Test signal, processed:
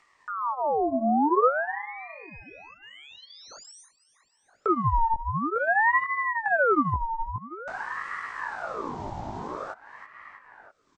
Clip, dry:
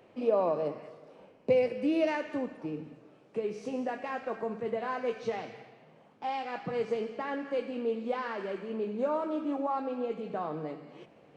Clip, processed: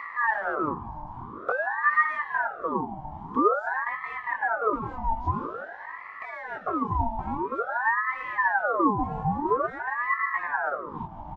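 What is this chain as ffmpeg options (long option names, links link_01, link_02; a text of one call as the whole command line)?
ffmpeg -i in.wav -filter_complex "[0:a]highpass=120,asplit=2[link_01][link_02];[link_02]acrusher=bits=4:mix=0:aa=0.000001,volume=-10dB[link_03];[link_01][link_03]amix=inputs=2:normalize=0,bandreject=frequency=2100:width=6,aresample=16000,asoftclip=type=tanh:threshold=-31dB,aresample=44100,flanger=delay=17:depth=4.1:speed=2.4,asplit=2[link_04][link_05];[link_05]adelay=324,lowpass=frequency=2800:poles=1,volume=-20dB,asplit=2[link_06][link_07];[link_07]adelay=324,lowpass=frequency=2800:poles=1,volume=0.35,asplit=2[link_08][link_09];[link_09]adelay=324,lowpass=frequency=2800:poles=1,volume=0.35[link_10];[link_04][link_06][link_08][link_10]amix=inputs=4:normalize=0,acompressor=mode=upward:threshold=-47dB:ratio=2.5,tiltshelf=frequency=920:gain=7,acrossover=split=370[link_11][link_12];[link_12]acompressor=threshold=-55dB:ratio=2.5[link_13];[link_11][link_13]amix=inputs=2:normalize=0,equalizer=frequency=400:width=1.8:gain=15,aeval=exprs='val(0)*sin(2*PI*1000*n/s+1000*0.55/0.49*sin(2*PI*0.49*n/s))':channel_layout=same,volume=7.5dB" out.wav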